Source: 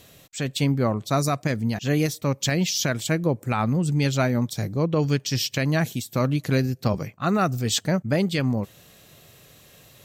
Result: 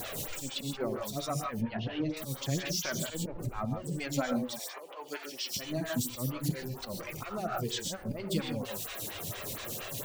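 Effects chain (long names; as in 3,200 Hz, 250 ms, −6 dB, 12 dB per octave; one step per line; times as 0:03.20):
converter with a step at zero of −25 dBFS
0:01.44–0:02.17: low-pass filter 3,500 Hz 24 dB per octave
reverb reduction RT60 1.2 s
0:03.14–0:03.65: spectral tilt −2.5 dB per octave
0:04.41–0:05.53: high-pass filter 830 Hz → 250 Hz 24 dB per octave
volume swells 194 ms
downward compressor, threshold −24 dBFS, peak gain reduction 7.5 dB
flanger 0.27 Hz, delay 1.2 ms, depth 9.3 ms, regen +41%
reverb whose tail is shaped and stops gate 180 ms rising, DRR 3 dB
phaser with staggered stages 4.3 Hz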